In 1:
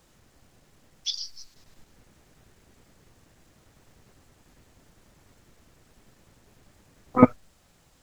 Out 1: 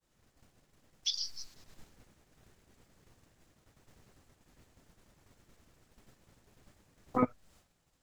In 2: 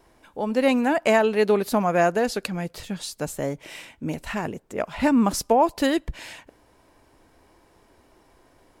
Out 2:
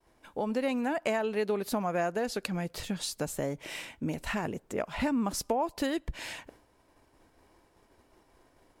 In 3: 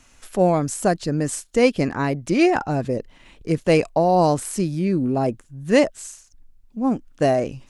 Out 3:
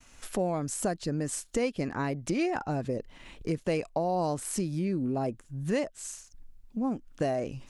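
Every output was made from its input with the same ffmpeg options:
-af "agate=range=-33dB:threshold=-51dB:ratio=3:detection=peak,acompressor=threshold=-30dB:ratio=3"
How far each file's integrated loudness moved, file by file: -11.0, -9.0, -10.5 LU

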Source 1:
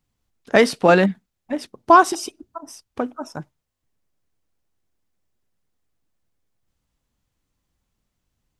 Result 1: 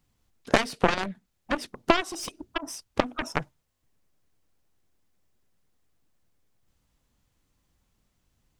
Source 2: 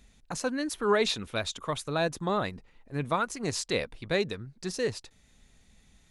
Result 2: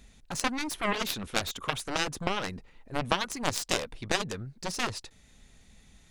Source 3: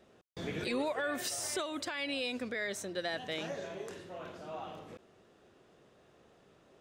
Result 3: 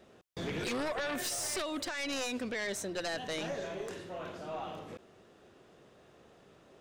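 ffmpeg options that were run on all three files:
-af "acompressor=threshold=-26dB:ratio=10,aeval=exprs='0.224*(cos(1*acos(clip(val(0)/0.224,-1,1)))-cos(1*PI/2))+0.0501*(cos(7*acos(clip(val(0)/0.224,-1,1)))-cos(7*PI/2))+0.00447*(cos(8*acos(clip(val(0)/0.224,-1,1)))-cos(8*PI/2))':c=same,volume=8.5dB"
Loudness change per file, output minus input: -11.0, -1.0, +1.0 LU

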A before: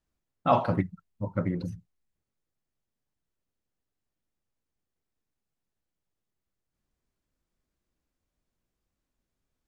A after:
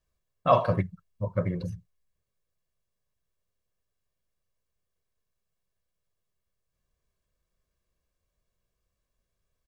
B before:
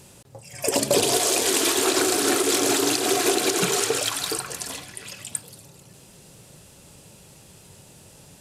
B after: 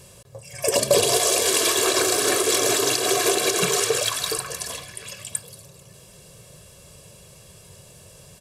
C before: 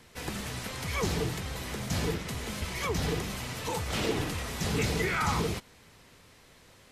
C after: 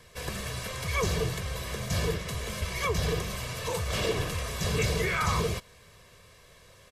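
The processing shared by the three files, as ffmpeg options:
-af "aecho=1:1:1.8:0.64"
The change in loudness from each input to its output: +1.5, +1.5, +1.5 LU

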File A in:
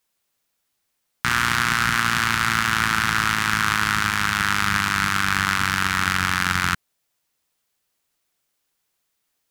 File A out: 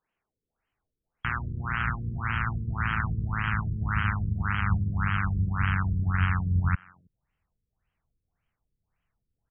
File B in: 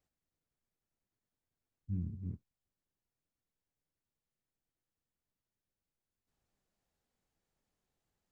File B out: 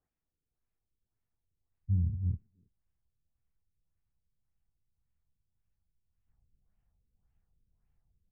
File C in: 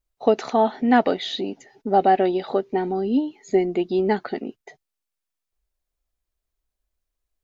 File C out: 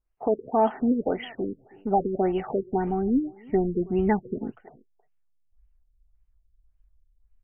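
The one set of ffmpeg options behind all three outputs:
-filter_complex "[0:a]bandreject=f=570:w=12,asubboost=boost=9.5:cutoff=110,alimiter=limit=-12.5dB:level=0:latency=1:release=45,adynamicsmooth=sensitivity=6:basefreq=5.7k,asplit=2[a][b];[b]adelay=320,highpass=300,lowpass=3.4k,asoftclip=type=hard:threshold=-21.5dB,volume=-20dB[c];[a][c]amix=inputs=2:normalize=0,afftfilt=real='re*lt(b*sr/1024,490*pow(3300/490,0.5+0.5*sin(2*PI*1.8*pts/sr)))':imag='im*lt(b*sr/1024,490*pow(3300/490,0.5+0.5*sin(2*PI*1.8*pts/sr)))':win_size=1024:overlap=0.75"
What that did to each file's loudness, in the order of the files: -8.0, +8.5, -4.5 LU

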